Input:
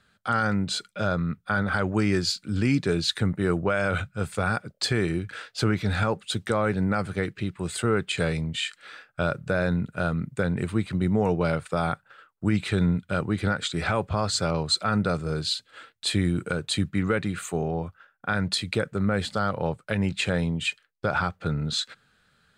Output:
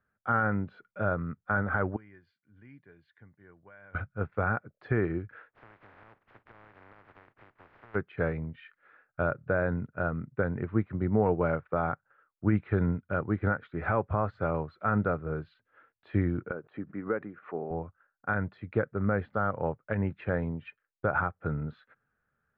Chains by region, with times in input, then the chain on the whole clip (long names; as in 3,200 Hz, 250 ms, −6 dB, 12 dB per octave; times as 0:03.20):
0:01.96–0:03.95: guitar amp tone stack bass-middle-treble 5-5-5 + notch comb filter 1,300 Hz
0:05.49–0:07.94: compressing power law on the bin magnitudes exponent 0.12 + parametric band 120 Hz +5 dB 0.38 octaves + downward compressor 16 to 1, threshold −32 dBFS
0:16.51–0:17.71: high-pass filter 240 Hz + head-to-tape spacing loss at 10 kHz 31 dB + background raised ahead of every attack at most 130 dB per second
whole clip: low-pass filter 1,800 Hz 24 dB per octave; parametric band 180 Hz −5.5 dB 0.37 octaves; expander for the loud parts 1.5 to 1, over −46 dBFS